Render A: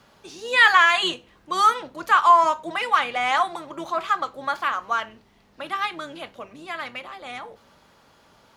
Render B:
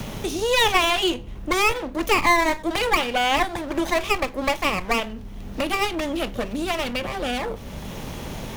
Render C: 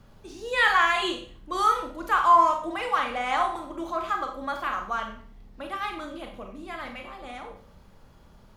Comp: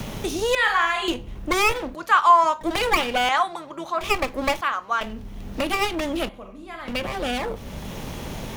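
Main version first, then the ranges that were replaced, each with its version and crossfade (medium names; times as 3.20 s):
B
0.55–1.08 s: from C
1.95–2.61 s: from A
3.29–4.01 s: from A
4.61–5.01 s: from A
6.29–6.88 s: from C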